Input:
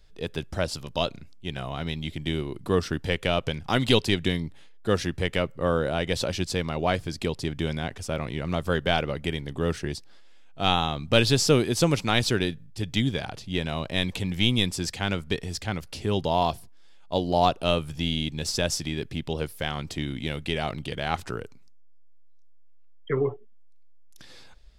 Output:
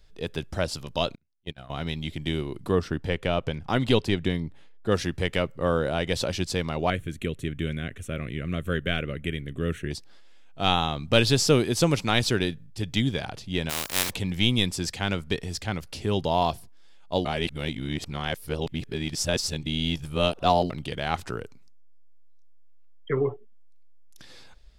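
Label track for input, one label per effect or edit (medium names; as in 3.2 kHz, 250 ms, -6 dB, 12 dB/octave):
1.150000	1.700000	gate -32 dBFS, range -31 dB
2.710000	4.920000	treble shelf 2.6 kHz -8.5 dB
6.900000	9.910000	static phaser centre 2.1 kHz, stages 4
13.690000	14.090000	spectral contrast reduction exponent 0.17
17.250000	20.700000	reverse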